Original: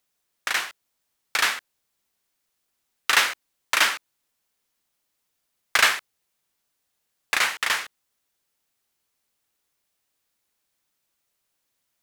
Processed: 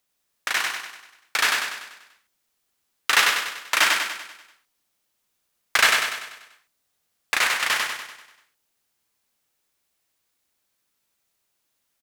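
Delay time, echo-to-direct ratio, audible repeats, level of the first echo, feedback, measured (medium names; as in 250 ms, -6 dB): 97 ms, -2.0 dB, 6, -3.5 dB, 51%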